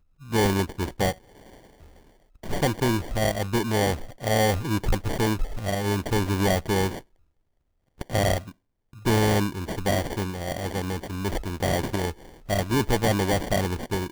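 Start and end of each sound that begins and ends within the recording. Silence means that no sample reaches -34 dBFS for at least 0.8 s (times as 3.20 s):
2.44–6.99 s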